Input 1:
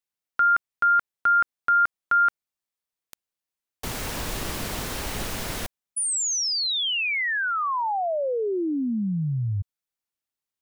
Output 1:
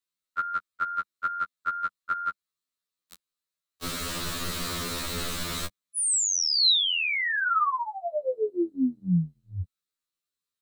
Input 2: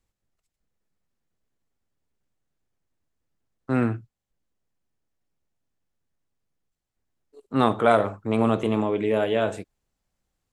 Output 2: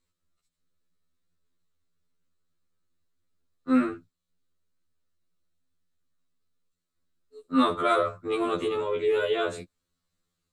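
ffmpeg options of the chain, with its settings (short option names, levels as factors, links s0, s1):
-filter_complex "[0:a]equalizer=f=125:t=o:w=0.33:g=-7,equalizer=f=200:t=o:w=0.33:g=6,equalizer=f=800:t=o:w=0.33:g=-11,equalizer=f=1250:t=o:w=0.33:g=7,equalizer=f=4000:t=o:w=0.33:g=9,equalizer=f=8000:t=o:w=0.33:g=4,acrossover=split=210|2700[s0][s1][s2];[s1]acompressor=threshold=0.112:ratio=3:attack=7.7:release=38:knee=2.83:detection=peak[s3];[s0][s3][s2]amix=inputs=3:normalize=0,afftfilt=real='re*2*eq(mod(b,4),0)':imag='im*2*eq(mod(b,4),0)':win_size=2048:overlap=0.75"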